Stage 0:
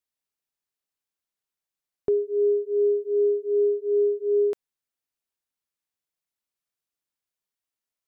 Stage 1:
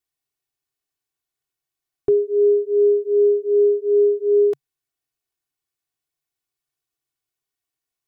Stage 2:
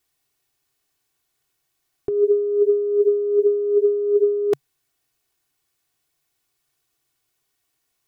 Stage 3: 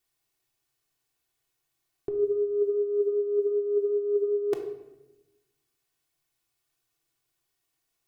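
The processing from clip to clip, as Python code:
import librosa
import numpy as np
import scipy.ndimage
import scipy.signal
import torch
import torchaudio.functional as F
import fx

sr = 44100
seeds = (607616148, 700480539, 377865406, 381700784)

y1 = fx.peak_eq(x, sr, hz=140.0, db=14.0, octaves=0.54)
y1 = y1 + 1.0 * np.pad(y1, (int(2.7 * sr / 1000.0), 0))[:len(y1)]
y2 = fx.over_compress(y1, sr, threshold_db=-24.0, ratio=-1.0)
y2 = F.gain(torch.from_numpy(y2), 5.0).numpy()
y3 = fx.room_shoebox(y2, sr, seeds[0], volume_m3=450.0, walls='mixed', distance_m=0.74)
y3 = F.gain(torch.from_numpy(y3), -6.5).numpy()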